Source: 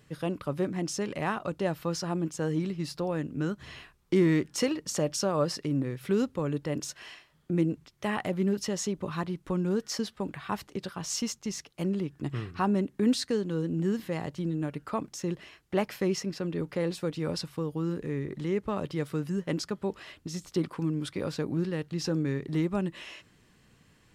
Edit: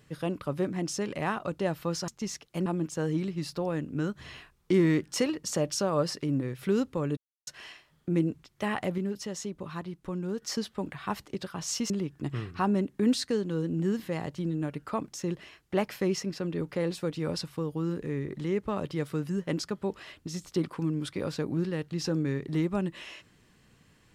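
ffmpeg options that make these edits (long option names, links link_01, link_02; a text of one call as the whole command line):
ffmpeg -i in.wav -filter_complex "[0:a]asplit=8[link_01][link_02][link_03][link_04][link_05][link_06][link_07][link_08];[link_01]atrim=end=2.082[link_09];[link_02]atrim=start=11.318:end=11.902[link_10];[link_03]atrim=start=2.078:end=6.59,asetpts=PTS-STARTPTS,afade=type=out:start_time=4.508:duration=0.004:curve=hsin[link_11];[link_04]atrim=start=6.59:end=6.89,asetpts=PTS-STARTPTS,volume=0[link_12];[link_05]atrim=start=6.89:end=8.402,asetpts=PTS-STARTPTS,afade=type=in:duration=0.004:curve=hsin[link_13];[link_06]atrim=start=8.398:end=9.842,asetpts=PTS-STARTPTS,volume=-5dB[link_14];[link_07]atrim=start=9.838:end=11.322[link_15];[link_08]atrim=start=11.898[link_16];[link_09][link_10]acrossfade=duration=0.004:curve1=hsin:curve2=hsin[link_17];[link_11][link_12][link_13]concat=n=3:v=0:a=1[link_18];[link_17][link_18]acrossfade=duration=0.004:curve1=hsin:curve2=hsin[link_19];[link_19][link_14]acrossfade=duration=0.004:curve1=hsin:curve2=hsin[link_20];[link_20][link_15]acrossfade=duration=0.004:curve1=hsin:curve2=hsin[link_21];[link_21][link_16]acrossfade=duration=0.004:curve1=hsin:curve2=hsin" out.wav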